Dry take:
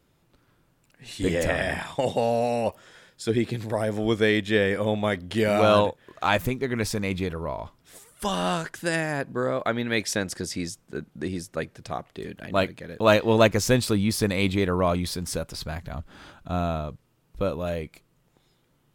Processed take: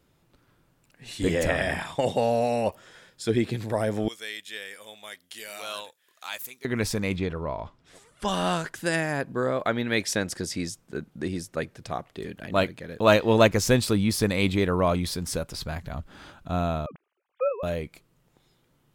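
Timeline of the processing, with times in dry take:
0:04.08–0:06.65: first difference
0:07.16–0:08.28: high-frequency loss of the air 75 metres
0:16.86–0:17.63: three sine waves on the formant tracks

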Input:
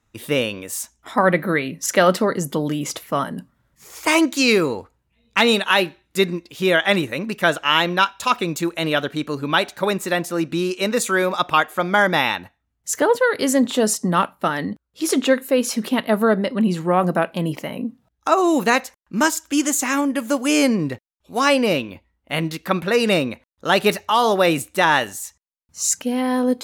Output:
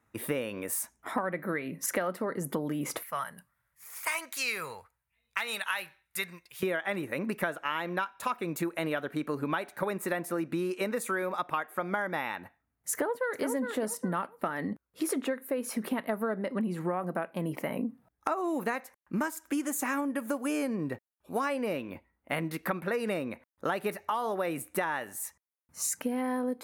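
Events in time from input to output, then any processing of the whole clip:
0:03.03–0:06.63: guitar amp tone stack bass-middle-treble 10-0-10
0:12.92–0:13.44: delay throw 410 ms, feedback 25%, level −8 dB
0:19.66–0:21.41: notch filter 2,100 Hz
whole clip: high-pass filter 170 Hz 6 dB per octave; flat-topped bell 4,600 Hz −10.5 dB; downward compressor 10 to 1, threshold −28 dBFS

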